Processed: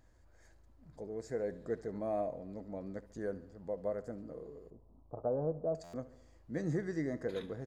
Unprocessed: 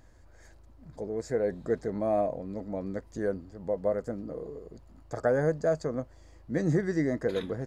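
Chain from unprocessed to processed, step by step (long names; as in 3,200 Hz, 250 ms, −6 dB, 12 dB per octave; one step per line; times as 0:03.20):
0:04.70–0:05.75: Butterworth low-pass 1,100 Hz 48 dB per octave
repeating echo 71 ms, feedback 59%, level −18 dB
buffer that repeats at 0:05.83, samples 512, times 8
level −8.5 dB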